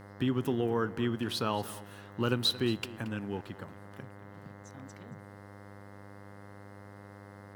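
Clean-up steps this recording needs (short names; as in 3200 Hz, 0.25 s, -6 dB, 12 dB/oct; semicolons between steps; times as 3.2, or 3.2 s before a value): de-hum 100.4 Hz, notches 21; notch 520 Hz, Q 30; inverse comb 0.227 s -17 dB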